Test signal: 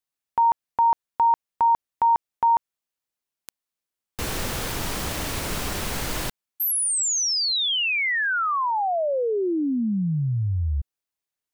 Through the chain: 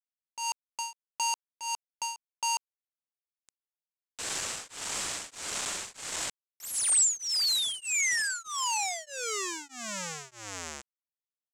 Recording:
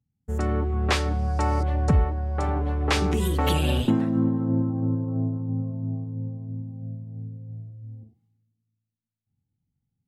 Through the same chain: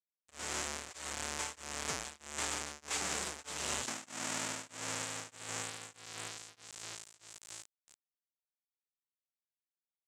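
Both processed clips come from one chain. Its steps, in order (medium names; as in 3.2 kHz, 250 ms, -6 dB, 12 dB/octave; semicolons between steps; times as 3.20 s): square wave that keeps the level; high-pass 1.2 kHz 6 dB/octave; peak limiter -14 dBFS; bit crusher 5-bit; resonant low-pass 7.7 kHz, resonance Q 3.4; tremolo of two beating tones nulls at 1.6 Hz; trim -7.5 dB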